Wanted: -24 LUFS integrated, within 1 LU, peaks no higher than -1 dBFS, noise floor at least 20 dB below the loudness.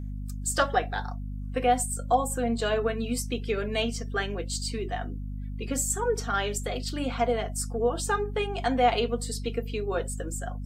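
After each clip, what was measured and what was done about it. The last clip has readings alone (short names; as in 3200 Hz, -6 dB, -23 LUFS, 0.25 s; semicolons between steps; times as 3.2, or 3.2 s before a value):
hum 50 Hz; harmonics up to 250 Hz; hum level -32 dBFS; loudness -29.0 LUFS; peak -10.0 dBFS; loudness target -24.0 LUFS
-> notches 50/100/150/200/250 Hz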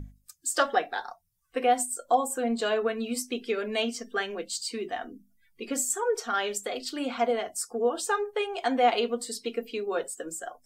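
hum none; loudness -29.0 LUFS; peak -10.0 dBFS; loudness target -24.0 LUFS
-> gain +5 dB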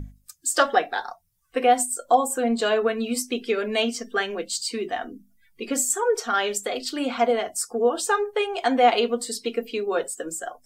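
loudness -24.0 LUFS; peak -5.0 dBFS; noise floor -61 dBFS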